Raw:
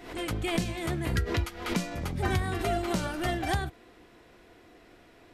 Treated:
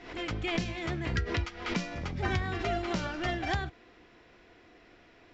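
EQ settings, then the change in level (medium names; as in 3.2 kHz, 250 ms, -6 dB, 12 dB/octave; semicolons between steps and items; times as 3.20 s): rippled Chebyshev low-pass 7.5 kHz, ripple 3 dB; distance through air 160 m; treble shelf 4 kHz +11 dB; 0.0 dB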